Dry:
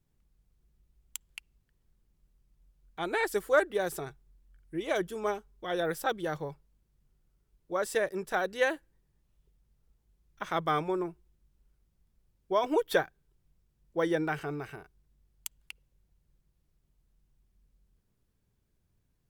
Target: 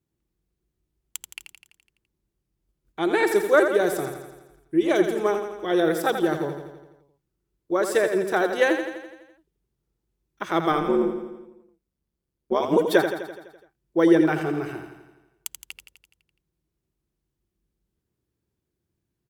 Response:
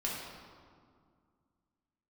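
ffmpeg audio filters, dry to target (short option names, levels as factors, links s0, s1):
-filter_complex "[0:a]agate=range=0.316:threshold=0.001:ratio=16:detection=peak,highpass=66,equalizer=f=340:w=3.1:g=10,asettb=1/sr,asplit=3[s0][s1][s2];[s0]atrim=end=10.724[s3];[s1]atrim=start=10.72:end=12.78,asetpts=PTS-STARTPTS,afade=t=in:d=0.004:c=qsin,afade=t=out:st=2.056:d=0.004:c=qsin,tremolo=f=140:d=0.824[s4];[s2]atrim=start=12.776[s5];[s3][s4]acrossfade=d=0.004:c1=hsin:c2=qsin[s6];[s6][s5]acrossfade=d=0.004:c1=qsin:c2=hsin,aecho=1:1:84|168|252|336|420|504|588|672:0.398|0.239|0.143|0.086|0.0516|0.031|0.0186|0.0111,volume=1.88"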